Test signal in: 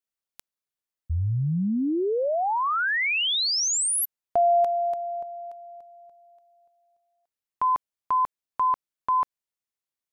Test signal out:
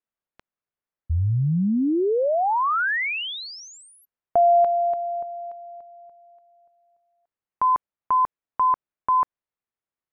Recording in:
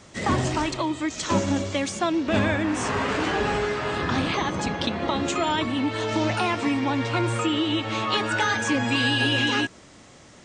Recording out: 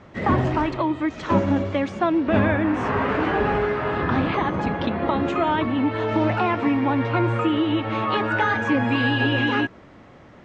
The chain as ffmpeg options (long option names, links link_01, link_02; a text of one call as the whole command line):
ffmpeg -i in.wav -af "lowpass=1900,volume=3.5dB" out.wav